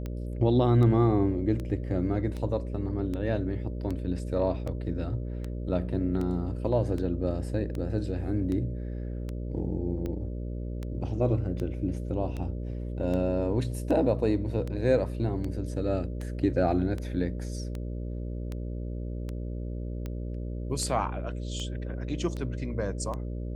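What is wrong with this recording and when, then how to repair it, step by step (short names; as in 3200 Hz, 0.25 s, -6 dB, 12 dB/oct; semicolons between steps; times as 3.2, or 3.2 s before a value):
buzz 60 Hz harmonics 10 -34 dBFS
tick 78 rpm -23 dBFS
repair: de-click; de-hum 60 Hz, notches 10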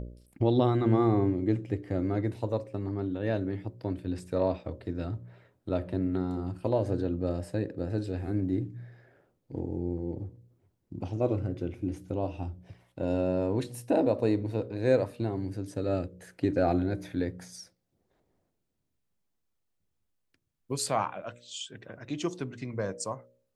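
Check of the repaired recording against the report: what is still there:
none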